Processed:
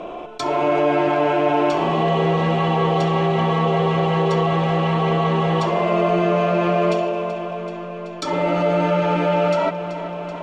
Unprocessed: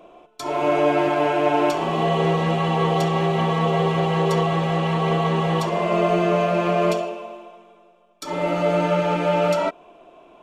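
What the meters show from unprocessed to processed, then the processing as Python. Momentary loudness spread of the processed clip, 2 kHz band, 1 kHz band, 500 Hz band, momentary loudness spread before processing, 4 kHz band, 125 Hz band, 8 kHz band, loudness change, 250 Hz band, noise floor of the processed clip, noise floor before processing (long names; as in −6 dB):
9 LU, +1.5 dB, +2.0 dB, +2.0 dB, 7 LU, +0.5 dB, +2.0 dB, can't be measured, +1.5 dB, +2.0 dB, −31 dBFS, −53 dBFS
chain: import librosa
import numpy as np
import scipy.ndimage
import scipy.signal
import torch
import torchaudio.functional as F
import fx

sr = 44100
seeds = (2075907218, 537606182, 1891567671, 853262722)

y = fx.air_absorb(x, sr, metres=88.0)
y = fx.echo_feedback(y, sr, ms=381, feedback_pct=59, wet_db=-20.0)
y = fx.env_flatten(y, sr, amount_pct=50)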